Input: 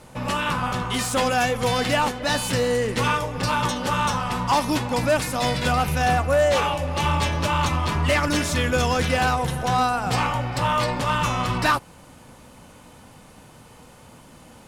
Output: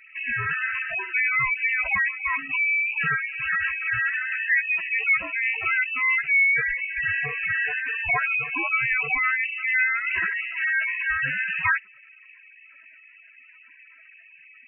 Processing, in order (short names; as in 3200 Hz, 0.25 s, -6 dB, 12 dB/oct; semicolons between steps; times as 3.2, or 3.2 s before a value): HPF 150 Hz 24 dB/oct; spectral gate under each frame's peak -10 dB strong; inverted band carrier 2800 Hz